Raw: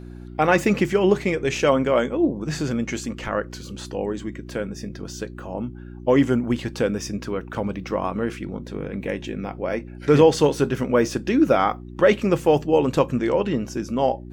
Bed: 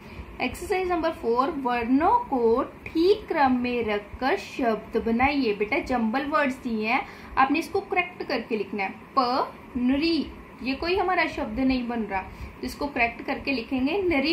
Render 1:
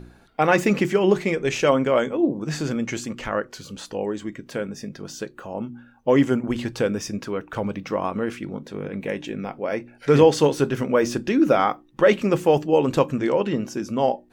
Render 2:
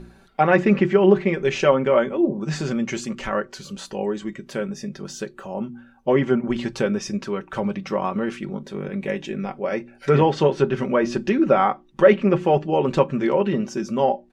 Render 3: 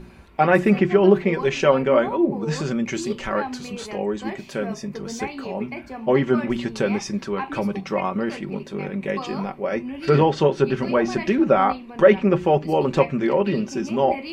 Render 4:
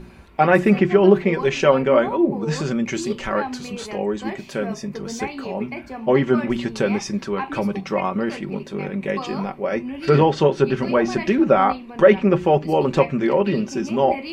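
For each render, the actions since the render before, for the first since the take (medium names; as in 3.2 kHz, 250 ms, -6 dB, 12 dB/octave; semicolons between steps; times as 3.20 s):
de-hum 60 Hz, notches 6
comb 5.2 ms, depth 59%; low-pass that closes with the level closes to 2.6 kHz, closed at -14.5 dBFS
add bed -10 dB
trim +1.5 dB; peak limiter -2 dBFS, peak gain reduction 1 dB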